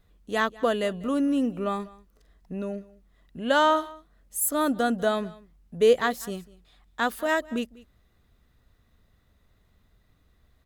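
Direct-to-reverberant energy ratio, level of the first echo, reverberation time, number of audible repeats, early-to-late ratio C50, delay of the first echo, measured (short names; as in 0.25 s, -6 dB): none, -21.5 dB, none, 1, none, 0.195 s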